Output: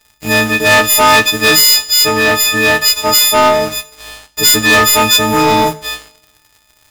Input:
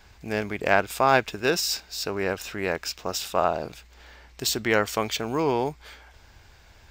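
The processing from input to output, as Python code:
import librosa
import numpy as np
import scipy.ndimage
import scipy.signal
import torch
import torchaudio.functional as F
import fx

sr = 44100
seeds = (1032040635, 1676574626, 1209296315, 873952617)

y = fx.freq_snap(x, sr, grid_st=6)
y = fx.leveller(y, sr, passes=5)
y = fx.rev_double_slope(y, sr, seeds[0], early_s=0.44, late_s=1.7, knee_db=-24, drr_db=11.0)
y = y * 10.0 ** (-3.0 / 20.0)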